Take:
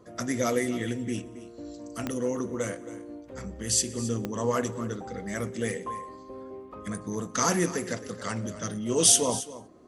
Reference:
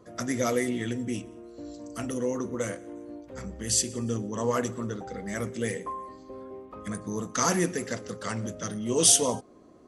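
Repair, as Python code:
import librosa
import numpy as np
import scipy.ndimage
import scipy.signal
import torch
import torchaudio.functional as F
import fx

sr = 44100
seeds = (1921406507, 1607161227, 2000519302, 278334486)

y = fx.fix_declick_ar(x, sr, threshold=10.0)
y = fx.fix_echo_inverse(y, sr, delay_ms=270, level_db=-15.5)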